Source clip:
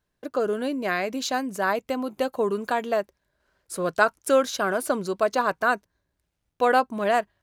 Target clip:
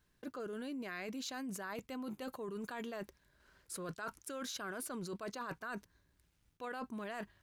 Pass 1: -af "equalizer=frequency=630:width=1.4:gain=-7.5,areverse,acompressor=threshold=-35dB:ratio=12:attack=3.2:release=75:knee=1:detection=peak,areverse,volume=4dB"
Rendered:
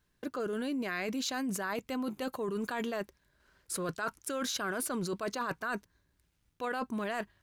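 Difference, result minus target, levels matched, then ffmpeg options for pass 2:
downward compressor: peak gain reduction −8 dB
-af "equalizer=frequency=630:width=1.4:gain=-7.5,areverse,acompressor=threshold=-44dB:ratio=12:attack=3.2:release=75:knee=1:detection=peak,areverse,volume=4dB"

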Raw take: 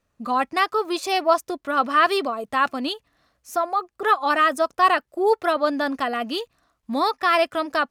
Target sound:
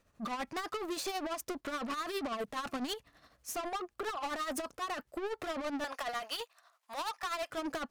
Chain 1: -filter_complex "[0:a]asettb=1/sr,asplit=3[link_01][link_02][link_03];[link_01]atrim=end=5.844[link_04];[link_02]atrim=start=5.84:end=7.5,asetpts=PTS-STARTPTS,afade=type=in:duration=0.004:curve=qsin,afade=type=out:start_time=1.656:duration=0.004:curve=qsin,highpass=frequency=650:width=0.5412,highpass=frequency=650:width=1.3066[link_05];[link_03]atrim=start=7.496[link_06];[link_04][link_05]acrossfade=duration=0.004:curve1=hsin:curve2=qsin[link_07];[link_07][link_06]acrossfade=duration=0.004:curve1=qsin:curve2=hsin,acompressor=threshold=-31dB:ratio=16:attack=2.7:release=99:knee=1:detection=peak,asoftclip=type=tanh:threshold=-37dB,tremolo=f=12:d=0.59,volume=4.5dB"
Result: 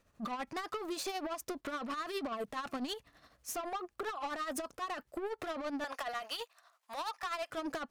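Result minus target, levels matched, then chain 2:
downward compressor: peak gain reduction +5.5 dB
-filter_complex "[0:a]asettb=1/sr,asplit=3[link_01][link_02][link_03];[link_01]atrim=end=5.844[link_04];[link_02]atrim=start=5.84:end=7.5,asetpts=PTS-STARTPTS,afade=type=in:duration=0.004:curve=qsin,afade=type=out:start_time=1.656:duration=0.004:curve=qsin,highpass=frequency=650:width=0.5412,highpass=frequency=650:width=1.3066[link_05];[link_03]atrim=start=7.496[link_06];[link_04][link_05]acrossfade=duration=0.004:curve1=hsin:curve2=qsin[link_07];[link_07][link_06]acrossfade=duration=0.004:curve1=qsin:curve2=hsin,acompressor=threshold=-25dB:ratio=16:attack=2.7:release=99:knee=1:detection=peak,asoftclip=type=tanh:threshold=-37dB,tremolo=f=12:d=0.59,volume=4.5dB"

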